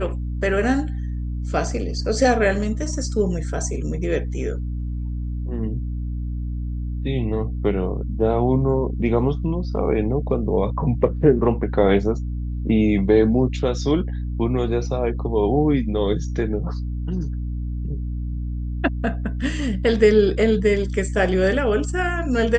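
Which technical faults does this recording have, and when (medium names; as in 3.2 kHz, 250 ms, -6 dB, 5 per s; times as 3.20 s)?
hum 60 Hz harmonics 5 -26 dBFS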